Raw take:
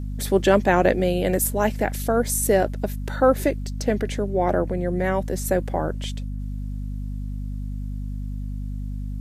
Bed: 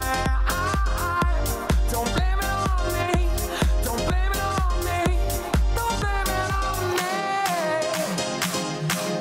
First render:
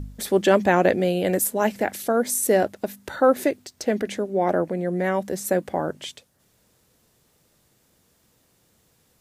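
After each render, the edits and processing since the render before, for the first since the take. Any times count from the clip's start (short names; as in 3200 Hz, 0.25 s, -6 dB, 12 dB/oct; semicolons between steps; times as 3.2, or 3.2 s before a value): de-hum 50 Hz, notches 5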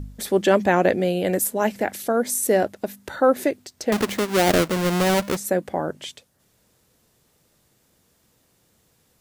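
3.92–5.37 half-waves squared off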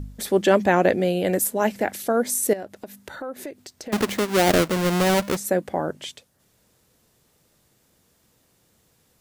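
2.53–3.93 compressor 3:1, threshold -35 dBFS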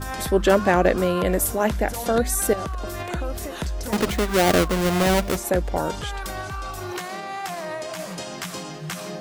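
add bed -7 dB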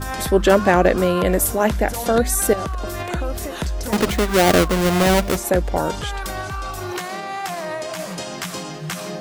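gain +3.5 dB; limiter -3 dBFS, peak gain reduction 1.5 dB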